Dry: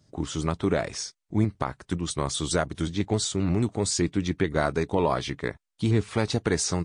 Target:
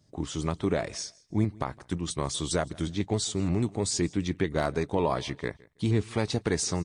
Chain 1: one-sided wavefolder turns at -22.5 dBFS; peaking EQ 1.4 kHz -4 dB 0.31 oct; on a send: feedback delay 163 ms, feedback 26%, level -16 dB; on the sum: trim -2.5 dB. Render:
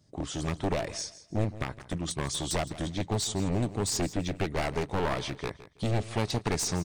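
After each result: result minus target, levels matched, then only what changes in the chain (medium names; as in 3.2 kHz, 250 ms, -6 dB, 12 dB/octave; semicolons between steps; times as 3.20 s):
one-sided wavefolder: distortion +34 dB; echo-to-direct +8 dB
change: one-sided wavefolder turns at -11.5 dBFS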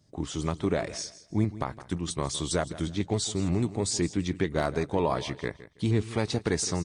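echo-to-direct +8 dB
change: feedback delay 163 ms, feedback 26%, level -24 dB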